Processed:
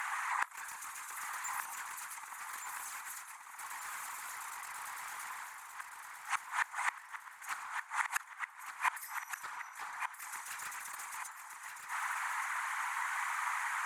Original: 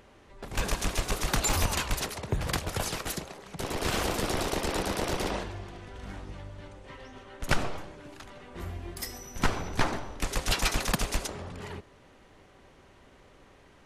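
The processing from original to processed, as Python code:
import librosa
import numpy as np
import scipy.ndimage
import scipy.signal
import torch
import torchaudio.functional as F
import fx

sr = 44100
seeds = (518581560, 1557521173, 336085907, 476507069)

p1 = scipy.signal.sosfilt(scipy.signal.butter(16, 890.0, 'highpass', fs=sr, output='sos'), x)
p2 = fx.band_shelf(p1, sr, hz=3900.0, db=-14.0, octaves=1.3)
p3 = fx.over_compress(p2, sr, threshold_db=-41.0, ratio=-1.0)
p4 = p2 + F.gain(torch.from_numpy(p3), -1.0).numpy()
p5 = 10.0 ** (-27.0 / 20.0) * np.tanh(p4 / 10.0 ** (-27.0 / 20.0))
p6 = fx.whisperise(p5, sr, seeds[0])
p7 = fx.fold_sine(p6, sr, drive_db=4, ceiling_db=-18.5)
p8 = fx.gate_flip(p7, sr, shuts_db=-29.0, range_db=-28)
p9 = fx.echo_feedback(p8, sr, ms=1173, feedback_pct=44, wet_db=-6.5)
y = F.gain(torch.from_numpy(p9), 10.5).numpy()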